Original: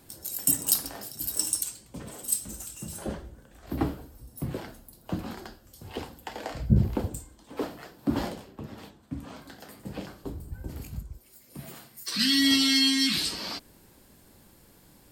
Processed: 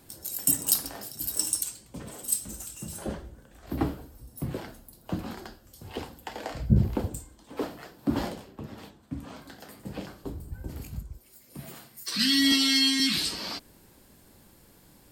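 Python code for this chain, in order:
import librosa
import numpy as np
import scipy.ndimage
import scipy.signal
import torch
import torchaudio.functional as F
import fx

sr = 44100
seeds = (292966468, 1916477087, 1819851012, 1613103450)

y = fx.highpass(x, sr, hz=230.0, slope=12, at=(12.52, 13.0))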